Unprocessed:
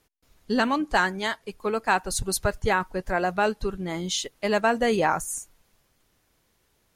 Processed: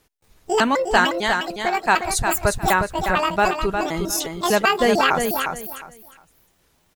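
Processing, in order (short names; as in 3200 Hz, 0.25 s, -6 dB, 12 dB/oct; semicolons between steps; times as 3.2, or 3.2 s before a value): trilling pitch shifter +9.5 st, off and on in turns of 0.15 s; on a send: feedback echo 0.357 s, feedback 22%, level -6 dB; on the sum: gain +5 dB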